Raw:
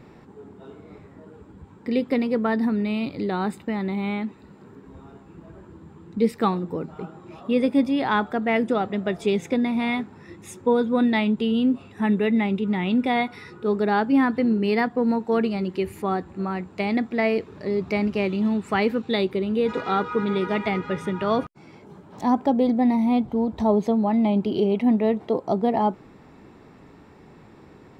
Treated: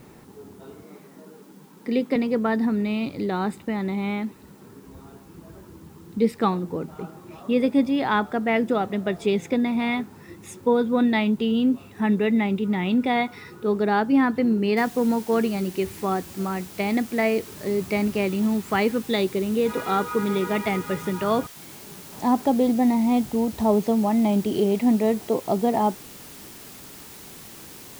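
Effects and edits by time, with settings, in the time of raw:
0.83–2.16 steep high-pass 150 Hz 48 dB/oct
14.77 noise floor step -60 dB -44 dB

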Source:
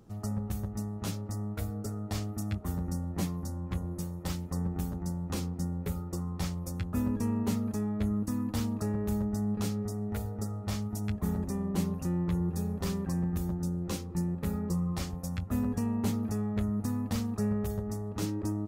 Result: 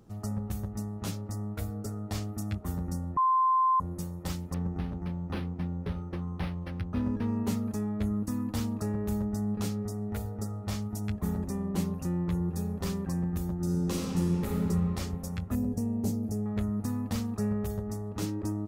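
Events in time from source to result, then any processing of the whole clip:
3.17–3.8 bleep 1040 Hz -21 dBFS
4.54–7.37 decimation joined by straight lines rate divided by 6×
13.54–14.54 reverb throw, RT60 2.8 s, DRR -3 dB
15.55–16.46 band shelf 1900 Hz -14 dB 2.3 oct

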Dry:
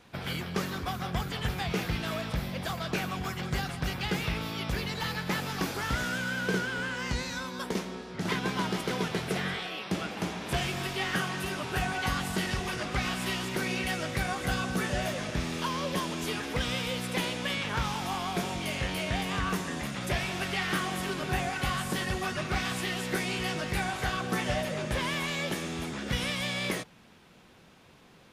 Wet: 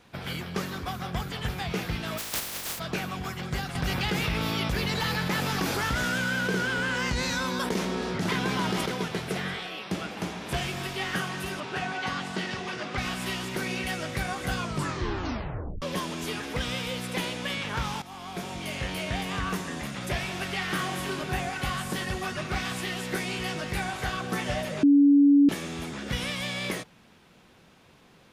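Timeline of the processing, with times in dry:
2.17–2.78 spectral contrast lowered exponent 0.11
3.75–8.86 fast leveller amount 70%
11.6–12.98 BPF 160–5700 Hz
14.55 tape stop 1.27 s
18.02–19.07 fade in equal-power, from -14.5 dB
20.76–21.23 doubler 29 ms -4.5 dB
24.83–25.49 bleep 284 Hz -14 dBFS

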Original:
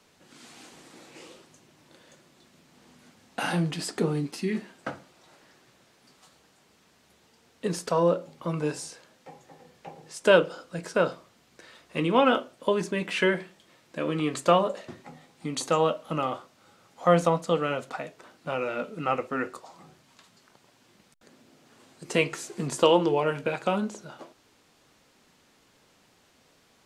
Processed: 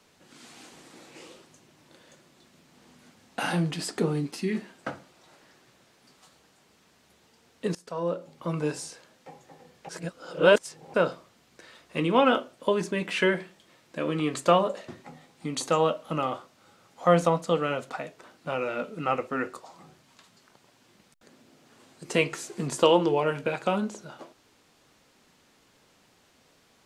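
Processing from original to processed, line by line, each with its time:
7.75–8.52 fade in, from -20.5 dB
9.89–10.94 reverse

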